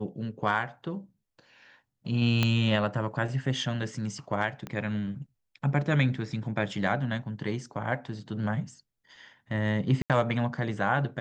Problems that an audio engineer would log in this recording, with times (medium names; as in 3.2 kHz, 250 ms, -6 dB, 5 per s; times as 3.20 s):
2.43 s: pop -11 dBFS
4.67 s: pop -22 dBFS
10.02–10.10 s: dropout 77 ms